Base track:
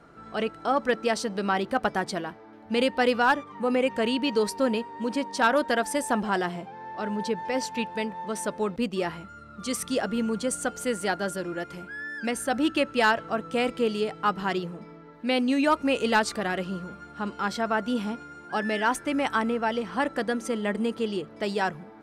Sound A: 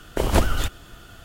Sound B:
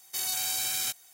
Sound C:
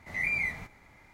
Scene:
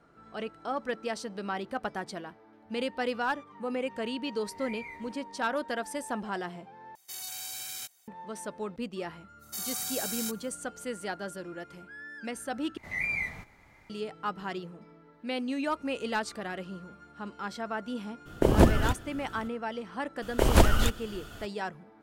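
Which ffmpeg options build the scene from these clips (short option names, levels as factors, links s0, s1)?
-filter_complex "[3:a]asplit=2[s0][s1];[2:a]asplit=2[s2][s3];[1:a]asplit=2[s4][s5];[0:a]volume=0.376[s6];[s3]equalizer=f=2700:t=o:w=1:g=-7[s7];[s4]equalizer=f=220:w=0.32:g=12[s8];[s6]asplit=3[s9][s10][s11];[s9]atrim=end=6.954[s12];[s2]atrim=end=1.13,asetpts=PTS-STARTPTS,volume=0.355[s13];[s10]atrim=start=8.076:end=12.774[s14];[s1]atrim=end=1.13,asetpts=PTS-STARTPTS,volume=0.841[s15];[s11]atrim=start=13.896[s16];[s0]atrim=end=1.13,asetpts=PTS-STARTPTS,volume=0.188,afade=t=in:d=0.004:c=hsin,afade=t=out:st=1.126:d=0.004:c=hsin,adelay=196245S[s17];[s7]atrim=end=1.13,asetpts=PTS-STARTPTS,volume=0.631,afade=t=in:d=0.05,afade=t=out:st=1.08:d=0.05,adelay=9390[s18];[s8]atrim=end=1.24,asetpts=PTS-STARTPTS,volume=0.398,afade=t=in:d=0.02,afade=t=out:st=1.22:d=0.02,adelay=18250[s19];[s5]atrim=end=1.24,asetpts=PTS-STARTPTS,volume=0.891,afade=t=in:d=0.004:c=hsin,afade=t=out:st=1.236:d=0.004:c=hsin,adelay=20220[s20];[s12][s13]acrossfade=d=0.004:c1=hsin:c2=hsin[s21];[s21][s14]acrossfade=d=0.004:c1=hsin:c2=hsin[s22];[s22][s15]acrossfade=d=0.004:c1=hsin:c2=hsin[s23];[s23][s16]acrossfade=d=0.004:c1=hsin:c2=hsin[s24];[s24][s17][s18][s19][s20]amix=inputs=5:normalize=0"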